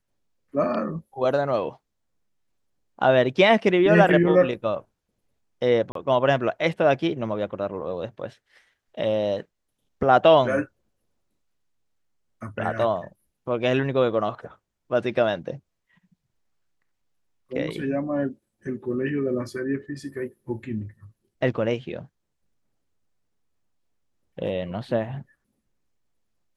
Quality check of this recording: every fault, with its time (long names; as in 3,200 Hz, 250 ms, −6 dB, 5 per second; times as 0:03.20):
0:05.92–0:05.95: drop-out 33 ms